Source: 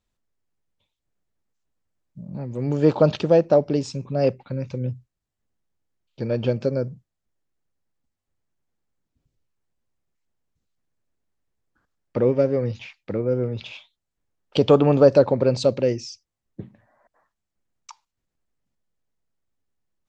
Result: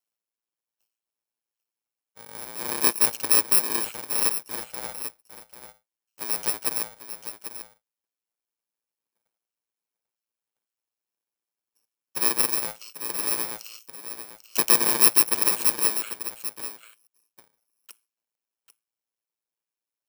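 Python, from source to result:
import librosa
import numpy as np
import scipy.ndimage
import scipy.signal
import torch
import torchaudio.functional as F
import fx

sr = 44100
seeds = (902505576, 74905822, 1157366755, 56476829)

y = fx.bit_reversed(x, sr, seeds[0], block=64)
y = scipy.signal.sosfilt(scipy.signal.butter(2, 490.0, 'highpass', fs=sr, output='sos'), y)
y = y * np.sin(2.0 * np.pi * 56.0 * np.arange(len(y)) / sr)
y = y + 10.0 ** (-10.5 / 20.0) * np.pad(y, (int(793 * sr / 1000.0), 0))[:len(y)]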